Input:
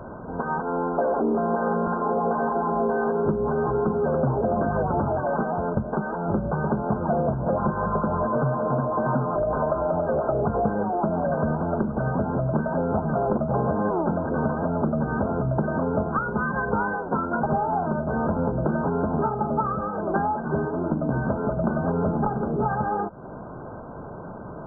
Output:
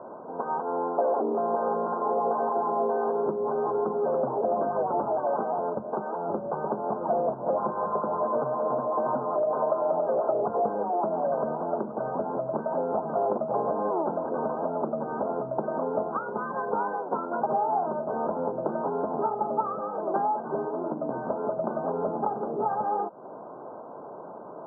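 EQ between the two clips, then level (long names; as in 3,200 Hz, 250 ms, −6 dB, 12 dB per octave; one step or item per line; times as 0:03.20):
high-pass filter 400 Hz 12 dB per octave
low-pass filter 1,100 Hz 24 dB per octave
0.0 dB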